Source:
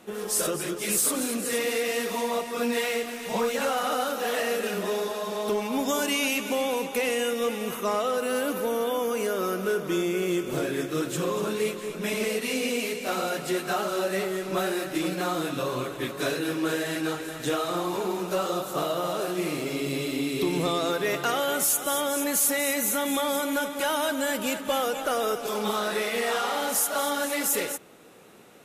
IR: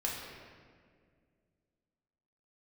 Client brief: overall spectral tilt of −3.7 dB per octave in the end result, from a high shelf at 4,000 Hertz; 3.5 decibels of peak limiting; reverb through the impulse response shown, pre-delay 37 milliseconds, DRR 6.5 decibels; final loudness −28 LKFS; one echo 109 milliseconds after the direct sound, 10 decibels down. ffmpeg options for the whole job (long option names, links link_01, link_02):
-filter_complex "[0:a]highshelf=frequency=4000:gain=-6,alimiter=limit=-20dB:level=0:latency=1,aecho=1:1:109:0.316,asplit=2[link_01][link_02];[1:a]atrim=start_sample=2205,adelay=37[link_03];[link_02][link_03]afir=irnorm=-1:irlink=0,volume=-11dB[link_04];[link_01][link_04]amix=inputs=2:normalize=0"